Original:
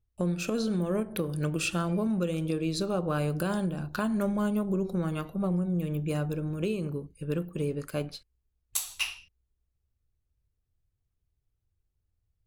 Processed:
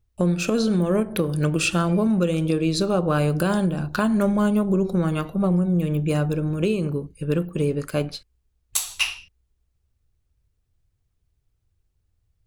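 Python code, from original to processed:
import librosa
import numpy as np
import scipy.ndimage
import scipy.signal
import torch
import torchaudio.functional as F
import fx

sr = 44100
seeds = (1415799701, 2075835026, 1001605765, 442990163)

y = fx.peak_eq(x, sr, hz=14000.0, db=-6.5, octaves=0.44)
y = y * 10.0 ** (8.0 / 20.0)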